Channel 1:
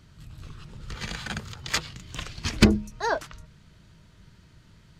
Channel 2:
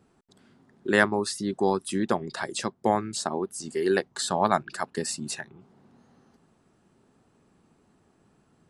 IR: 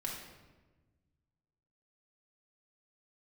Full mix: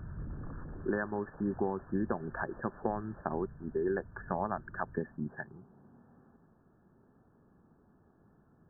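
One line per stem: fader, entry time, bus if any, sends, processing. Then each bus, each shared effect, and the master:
−5.0 dB, 0.00 s, no send, echo send −21 dB, sine wavefolder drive 9 dB, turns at −34 dBFS; automatic ducking −9 dB, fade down 1.35 s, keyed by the second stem
−3.0 dB, 0.00 s, no send, no echo send, downward compressor 10 to 1, threshold −26 dBFS, peak gain reduction 13 dB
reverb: not used
echo: repeating echo 183 ms, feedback 55%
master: linear-phase brick-wall low-pass 1,800 Hz; low-shelf EQ 140 Hz +6.5 dB

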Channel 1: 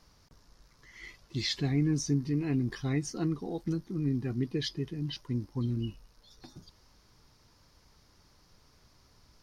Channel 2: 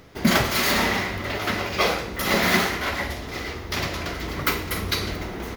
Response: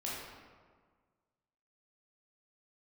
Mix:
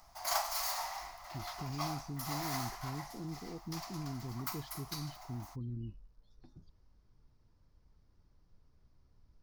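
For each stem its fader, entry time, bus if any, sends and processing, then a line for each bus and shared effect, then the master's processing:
−14.5 dB, 0.00 s, no send, spectral tilt −3 dB per octave; brickwall limiter −20.5 dBFS, peak gain reduction 8.5 dB
−2.5 dB, 0.00 s, no send, elliptic high-pass filter 700 Hz, stop band 40 dB; flat-topped bell 2,300 Hz −13.5 dB; automatic ducking −9 dB, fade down 0.90 s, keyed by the first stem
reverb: not used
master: no processing

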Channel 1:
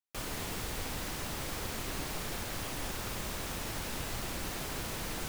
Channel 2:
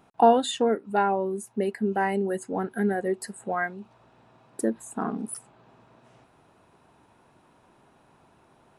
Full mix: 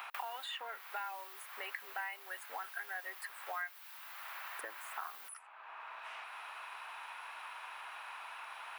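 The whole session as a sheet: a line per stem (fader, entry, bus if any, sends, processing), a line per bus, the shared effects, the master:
−2.0 dB, 0.00 s, no send, high-shelf EQ 12,000 Hz +7.5 dB; automatic ducking −10 dB, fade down 0.25 s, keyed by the second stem
−3.0 dB, 0.00 s, no send, sub-octave generator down 1 octave, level +1 dB; brickwall limiter −17.5 dBFS, peak gain reduction 11 dB; graphic EQ with 15 bands 100 Hz +7 dB, 250 Hz +8 dB, 2,500 Hz +6 dB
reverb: not used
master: inverse Chebyshev high-pass filter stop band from 170 Hz, stop band 80 dB; parametric band 7,100 Hz −13 dB 1.4 octaves; multiband upward and downward compressor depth 100%

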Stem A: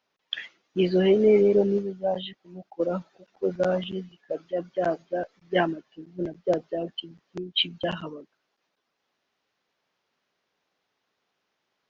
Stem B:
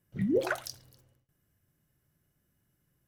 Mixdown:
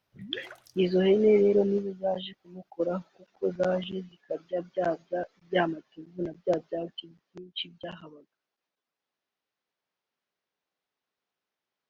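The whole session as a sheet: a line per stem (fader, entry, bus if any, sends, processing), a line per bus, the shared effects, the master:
0:06.72 −2.5 dB → 0:07.47 −11 dB, 0.00 s, no send, no processing
−9.5 dB, 0.00 s, no send, automatic ducking −6 dB, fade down 0.35 s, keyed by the first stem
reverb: not used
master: no processing

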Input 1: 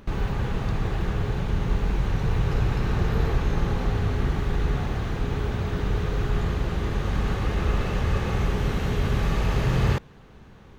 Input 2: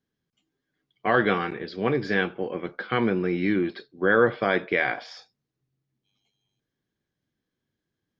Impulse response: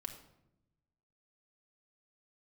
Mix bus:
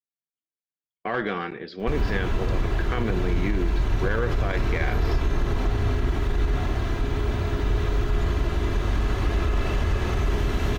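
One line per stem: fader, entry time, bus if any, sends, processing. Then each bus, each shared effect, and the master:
+1.0 dB, 1.80 s, no send, comb filter 3 ms, depth 55%
−1.5 dB, 0.00 s, no send, one-sided soft clipper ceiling −13 dBFS; noise gate −44 dBFS, range −30 dB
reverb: not used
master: brickwall limiter −14.5 dBFS, peak gain reduction 9 dB

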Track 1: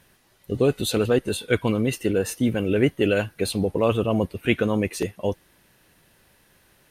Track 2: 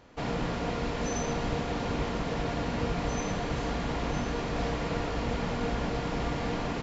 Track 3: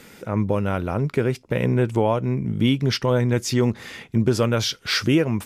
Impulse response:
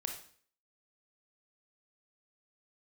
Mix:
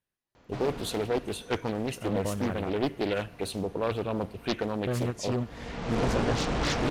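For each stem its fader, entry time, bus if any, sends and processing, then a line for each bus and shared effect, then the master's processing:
−10.0 dB, 0.00 s, send −10 dB, noise gate −52 dBFS, range −23 dB
+2.5 dB, 0.35 s, no send, automatic ducking −23 dB, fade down 1.50 s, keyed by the first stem
−10.0 dB, 1.75 s, muted 0:02.70–0:04.87, no send, low-pass filter 10,000 Hz; every ending faded ahead of time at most 350 dB per second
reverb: on, RT60 0.50 s, pre-delay 22 ms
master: highs frequency-modulated by the lows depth 0.98 ms

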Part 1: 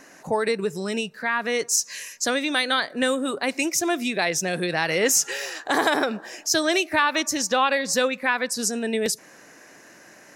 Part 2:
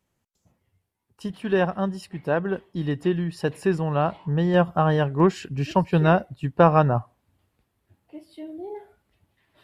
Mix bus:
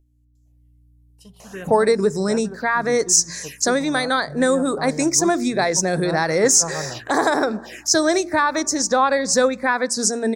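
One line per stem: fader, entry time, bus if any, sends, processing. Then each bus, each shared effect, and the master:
+2.5 dB, 1.40 s, no send, no processing
−15.5 dB, 0.00 s, no send, mains hum 60 Hz, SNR 15 dB; high-shelf EQ 4,400 Hz +11.5 dB; level that may rise only so fast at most 490 dB per second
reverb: not used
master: hum removal 58.16 Hz, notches 7; automatic gain control gain up to 6.5 dB; phaser swept by the level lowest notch 190 Hz, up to 2,900 Hz, full sweep at −20.5 dBFS

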